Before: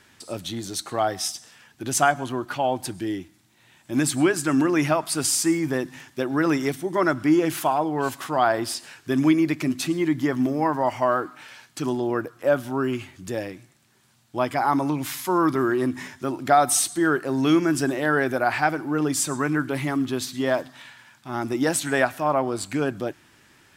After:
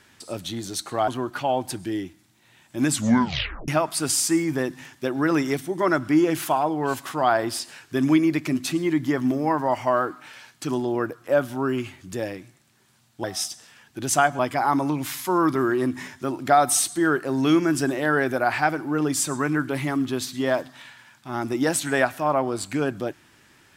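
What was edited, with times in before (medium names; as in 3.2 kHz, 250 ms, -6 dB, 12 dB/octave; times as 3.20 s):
1.08–2.23 s: move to 14.39 s
4.06 s: tape stop 0.77 s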